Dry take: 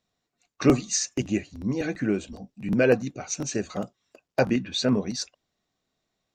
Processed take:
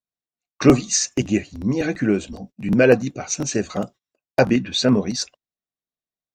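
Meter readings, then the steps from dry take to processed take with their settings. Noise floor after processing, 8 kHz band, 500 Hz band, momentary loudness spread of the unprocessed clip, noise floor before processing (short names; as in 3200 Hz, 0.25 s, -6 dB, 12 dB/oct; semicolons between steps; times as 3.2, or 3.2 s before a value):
under -85 dBFS, +6.0 dB, +6.0 dB, 12 LU, -82 dBFS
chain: gate -45 dBFS, range -26 dB; gain +6 dB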